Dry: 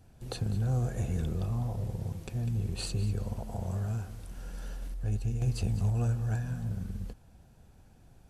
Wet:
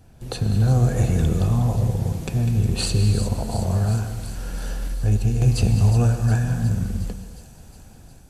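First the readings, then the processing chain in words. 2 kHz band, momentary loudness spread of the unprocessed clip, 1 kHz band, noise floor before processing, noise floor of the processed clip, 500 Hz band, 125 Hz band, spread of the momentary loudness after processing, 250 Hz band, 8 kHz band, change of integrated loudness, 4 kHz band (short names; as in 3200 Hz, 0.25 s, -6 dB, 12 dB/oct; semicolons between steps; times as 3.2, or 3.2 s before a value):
+12.5 dB, 12 LU, +12.5 dB, -58 dBFS, -46 dBFS, +12.5 dB, +12.0 dB, 13 LU, +12.5 dB, +13.5 dB, +12.0 dB, +12.5 dB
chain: AGC gain up to 5 dB; thin delay 0.361 s, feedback 68%, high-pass 5000 Hz, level -7 dB; non-linear reverb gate 0.34 s flat, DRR 8 dB; gain +7 dB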